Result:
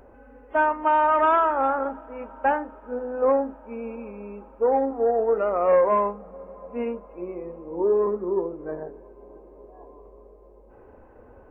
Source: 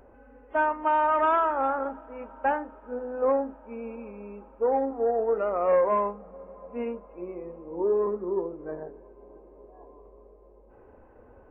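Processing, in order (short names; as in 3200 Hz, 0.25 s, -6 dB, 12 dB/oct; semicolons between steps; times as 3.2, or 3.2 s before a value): gain +3.5 dB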